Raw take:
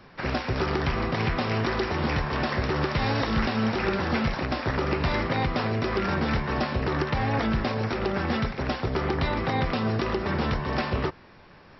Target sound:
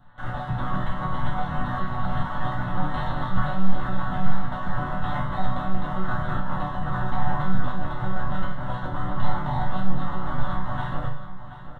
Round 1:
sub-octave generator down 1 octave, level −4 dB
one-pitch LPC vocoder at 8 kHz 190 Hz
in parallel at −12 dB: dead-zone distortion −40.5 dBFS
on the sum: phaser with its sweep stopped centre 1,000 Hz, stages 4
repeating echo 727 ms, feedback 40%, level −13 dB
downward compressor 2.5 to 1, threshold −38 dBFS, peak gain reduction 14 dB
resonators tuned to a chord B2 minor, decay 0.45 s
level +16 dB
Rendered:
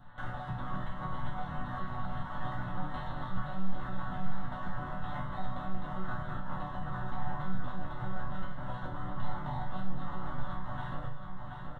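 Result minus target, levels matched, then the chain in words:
downward compressor: peak gain reduction +14 dB
sub-octave generator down 1 octave, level −4 dB
one-pitch LPC vocoder at 8 kHz 190 Hz
in parallel at −12 dB: dead-zone distortion −40.5 dBFS
on the sum: phaser with its sweep stopped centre 1,000 Hz, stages 4
resonators tuned to a chord B2 minor, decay 0.45 s
repeating echo 727 ms, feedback 40%, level −13 dB
level +16 dB

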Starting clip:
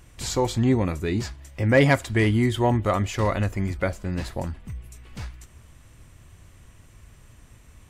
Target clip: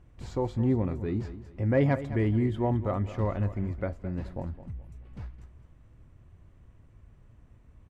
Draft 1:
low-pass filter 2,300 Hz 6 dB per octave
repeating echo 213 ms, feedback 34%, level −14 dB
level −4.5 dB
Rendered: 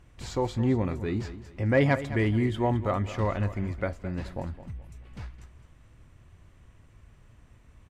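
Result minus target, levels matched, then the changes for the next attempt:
2,000 Hz band +6.5 dB
change: low-pass filter 640 Hz 6 dB per octave

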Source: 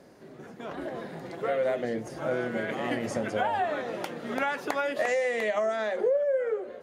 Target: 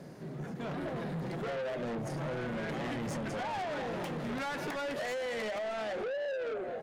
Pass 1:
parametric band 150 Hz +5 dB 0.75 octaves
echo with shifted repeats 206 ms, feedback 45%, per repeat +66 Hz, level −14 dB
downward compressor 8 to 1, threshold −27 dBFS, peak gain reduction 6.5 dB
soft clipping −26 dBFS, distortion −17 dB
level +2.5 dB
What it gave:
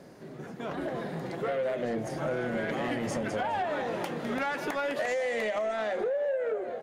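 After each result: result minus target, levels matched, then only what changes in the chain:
soft clipping: distortion −9 dB; 125 Hz band −6.0 dB
change: soft clipping −36 dBFS, distortion −8 dB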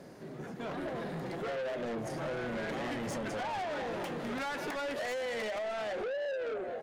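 125 Hz band −5.0 dB
change: parametric band 150 Hz +13.5 dB 0.75 octaves

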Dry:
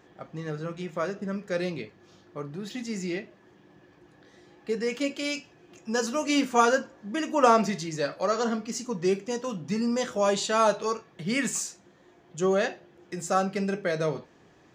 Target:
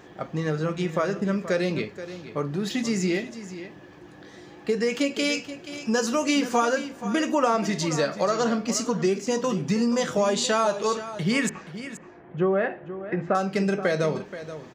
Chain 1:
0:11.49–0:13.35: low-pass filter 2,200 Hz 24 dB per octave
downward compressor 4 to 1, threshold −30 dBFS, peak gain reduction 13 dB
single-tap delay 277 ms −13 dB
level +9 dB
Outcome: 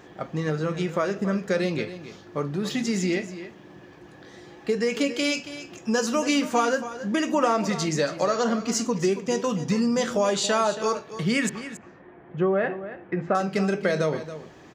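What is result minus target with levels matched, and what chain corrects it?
echo 201 ms early
0:11.49–0:13.35: low-pass filter 2,200 Hz 24 dB per octave
downward compressor 4 to 1, threshold −30 dBFS, peak gain reduction 13 dB
single-tap delay 478 ms −13 dB
level +9 dB

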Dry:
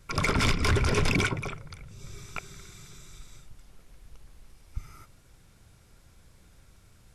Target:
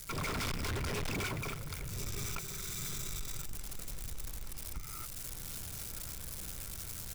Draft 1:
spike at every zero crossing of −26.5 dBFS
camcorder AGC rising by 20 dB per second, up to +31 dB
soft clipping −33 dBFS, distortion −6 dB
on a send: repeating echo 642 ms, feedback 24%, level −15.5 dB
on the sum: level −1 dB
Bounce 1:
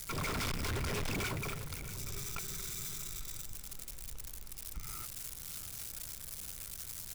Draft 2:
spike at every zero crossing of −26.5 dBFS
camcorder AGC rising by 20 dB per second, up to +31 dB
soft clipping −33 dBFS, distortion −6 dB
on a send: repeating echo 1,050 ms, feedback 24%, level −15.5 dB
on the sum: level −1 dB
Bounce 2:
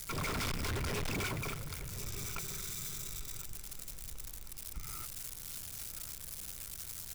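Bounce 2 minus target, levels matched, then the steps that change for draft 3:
spike at every zero crossing: distortion +8 dB
change: spike at every zero crossing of −34.5 dBFS

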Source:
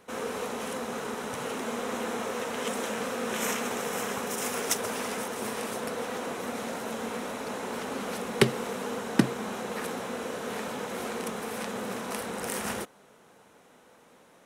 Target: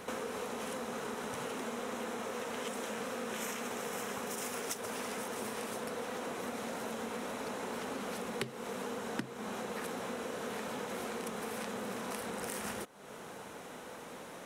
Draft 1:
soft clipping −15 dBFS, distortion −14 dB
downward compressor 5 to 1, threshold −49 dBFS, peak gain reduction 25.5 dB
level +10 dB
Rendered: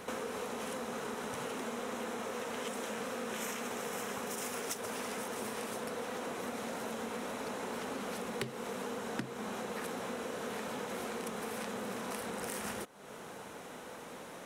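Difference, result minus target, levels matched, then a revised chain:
soft clipping: distortion +7 dB
soft clipping −8.5 dBFS, distortion −21 dB
downward compressor 5 to 1, threshold −49 dBFS, peak gain reduction 28 dB
level +10 dB

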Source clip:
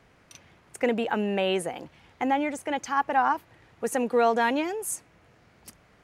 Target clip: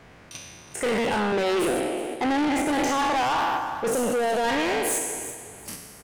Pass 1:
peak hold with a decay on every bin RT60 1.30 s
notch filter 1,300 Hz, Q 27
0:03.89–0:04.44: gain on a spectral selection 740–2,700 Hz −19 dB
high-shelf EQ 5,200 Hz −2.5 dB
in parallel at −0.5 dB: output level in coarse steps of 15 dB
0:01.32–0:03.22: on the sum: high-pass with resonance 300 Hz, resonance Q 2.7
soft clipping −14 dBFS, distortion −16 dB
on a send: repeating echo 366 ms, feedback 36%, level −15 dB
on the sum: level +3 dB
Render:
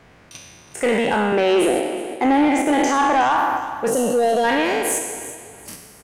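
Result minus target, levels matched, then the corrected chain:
soft clipping: distortion −9 dB
peak hold with a decay on every bin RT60 1.30 s
notch filter 1,300 Hz, Q 27
0:03.89–0:04.44: gain on a spectral selection 740–2,700 Hz −19 dB
high-shelf EQ 5,200 Hz −2.5 dB
in parallel at −0.5 dB: output level in coarse steps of 15 dB
0:01.32–0:03.22: on the sum: high-pass with resonance 300 Hz, resonance Q 2.7
soft clipping −24.5 dBFS, distortion −7 dB
on a send: repeating echo 366 ms, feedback 36%, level −15 dB
on the sum: level +3 dB

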